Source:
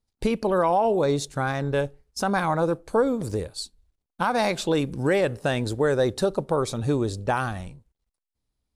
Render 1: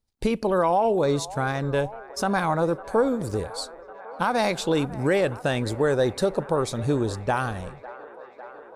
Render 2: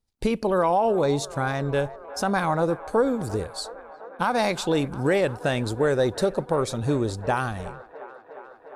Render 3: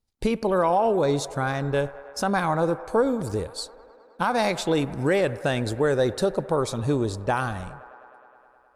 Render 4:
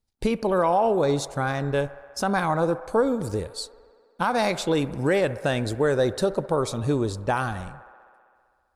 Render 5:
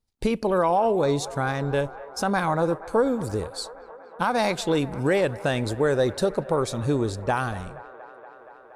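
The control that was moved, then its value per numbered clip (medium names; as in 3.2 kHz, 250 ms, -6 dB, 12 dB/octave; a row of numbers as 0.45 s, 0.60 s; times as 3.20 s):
feedback echo behind a band-pass, time: 551 ms, 355 ms, 104 ms, 65 ms, 236 ms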